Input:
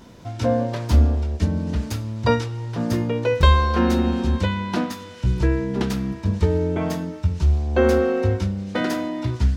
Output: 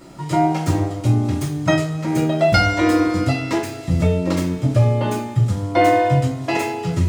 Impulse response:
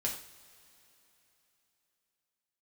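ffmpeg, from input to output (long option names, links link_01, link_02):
-filter_complex "[1:a]atrim=start_sample=2205[link_01];[0:a][link_01]afir=irnorm=-1:irlink=0,asetrate=59535,aresample=44100"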